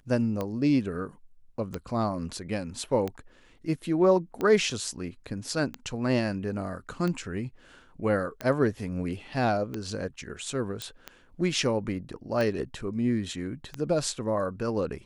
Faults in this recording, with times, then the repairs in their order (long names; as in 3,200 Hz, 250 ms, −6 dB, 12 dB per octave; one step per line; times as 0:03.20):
scratch tick 45 rpm −18 dBFS
0:10.82: click −19 dBFS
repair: click removal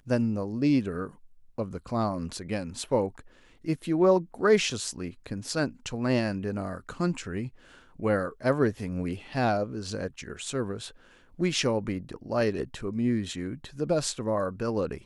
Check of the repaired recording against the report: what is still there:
none of them is left